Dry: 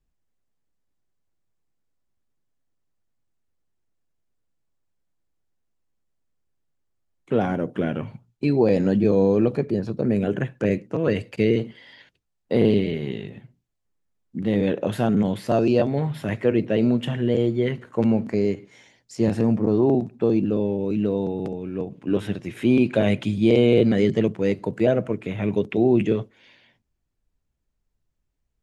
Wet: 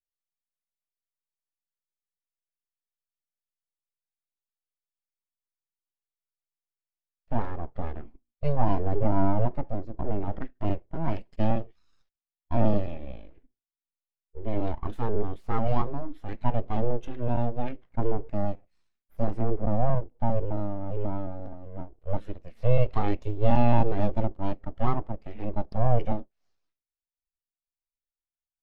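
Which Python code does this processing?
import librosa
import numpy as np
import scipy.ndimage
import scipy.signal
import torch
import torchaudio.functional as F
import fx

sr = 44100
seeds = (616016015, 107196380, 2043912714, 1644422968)

y = np.abs(x)
y = fx.spectral_expand(y, sr, expansion=1.5)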